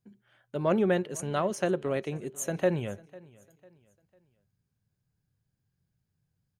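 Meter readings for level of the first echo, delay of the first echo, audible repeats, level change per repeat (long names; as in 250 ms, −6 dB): −22.5 dB, 499 ms, 2, −8.5 dB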